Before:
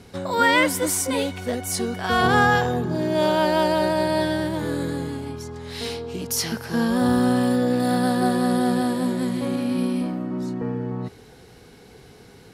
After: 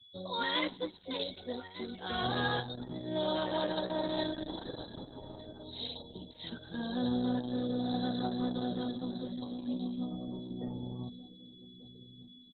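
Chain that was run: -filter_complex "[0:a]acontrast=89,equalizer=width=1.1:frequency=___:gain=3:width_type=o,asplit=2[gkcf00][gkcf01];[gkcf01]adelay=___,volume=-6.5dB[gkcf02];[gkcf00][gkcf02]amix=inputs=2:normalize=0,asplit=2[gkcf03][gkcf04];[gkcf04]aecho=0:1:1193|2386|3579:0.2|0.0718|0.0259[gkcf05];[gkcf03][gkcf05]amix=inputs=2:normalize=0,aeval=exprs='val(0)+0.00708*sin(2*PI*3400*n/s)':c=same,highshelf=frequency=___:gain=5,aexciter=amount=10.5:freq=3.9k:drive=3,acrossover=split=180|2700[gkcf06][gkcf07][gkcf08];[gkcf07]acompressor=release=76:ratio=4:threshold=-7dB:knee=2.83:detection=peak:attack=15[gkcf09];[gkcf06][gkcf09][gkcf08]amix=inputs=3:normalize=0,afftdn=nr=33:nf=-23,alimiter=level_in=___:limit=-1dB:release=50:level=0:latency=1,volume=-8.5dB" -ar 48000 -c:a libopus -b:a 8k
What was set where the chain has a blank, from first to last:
10k, 16, 3.4k, -13dB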